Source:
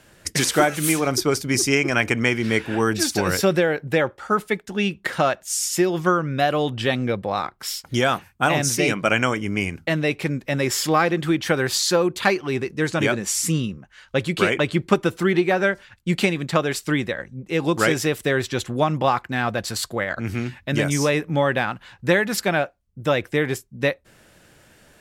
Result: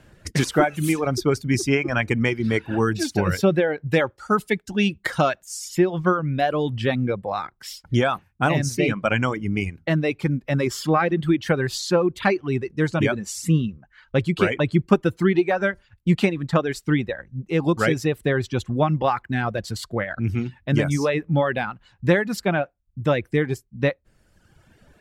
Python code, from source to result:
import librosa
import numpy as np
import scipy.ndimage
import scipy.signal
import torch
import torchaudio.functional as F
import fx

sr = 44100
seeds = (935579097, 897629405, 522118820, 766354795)

y = fx.high_shelf(x, sr, hz=3200.0, db=11.0, at=(3.92, 5.44), fade=0.02)
y = fx.low_shelf(y, sr, hz=220.0, db=9.5)
y = fx.dereverb_blind(y, sr, rt60_s=1.2)
y = fx.high_shelf(y, sr, hz=4700.0, db=-9.5)
y = y * librosa.db_to_amplitude(-1.5)